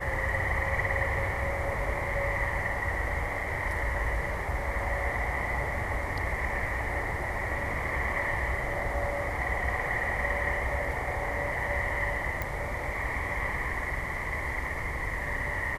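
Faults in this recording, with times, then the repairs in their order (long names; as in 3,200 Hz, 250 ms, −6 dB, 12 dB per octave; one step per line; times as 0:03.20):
0:12.42: click −17 dBFS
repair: click removal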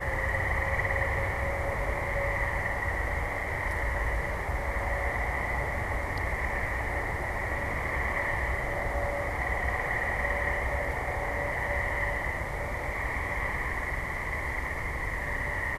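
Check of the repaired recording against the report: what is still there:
none of them is left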